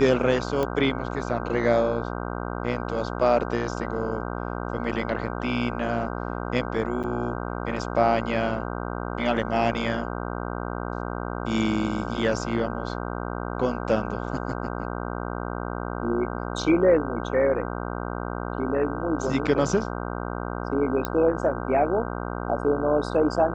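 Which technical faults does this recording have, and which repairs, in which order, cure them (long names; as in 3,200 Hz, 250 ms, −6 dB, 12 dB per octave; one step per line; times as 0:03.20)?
mains buzz 60 Hz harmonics 26 −31 dBFS
0:00.63: click −14 dBFS
0:07.03–0:07.04: drop-out 7.8 ms
0:21.05: click −11 dBFS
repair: click removal
hum removal 60 Hz, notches 26
repair the gap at 0:07.03, 7.8 ms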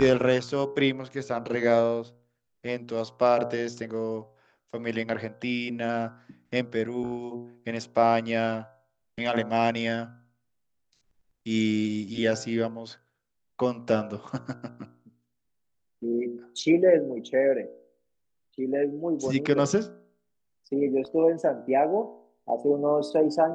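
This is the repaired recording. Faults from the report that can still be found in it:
none of them is left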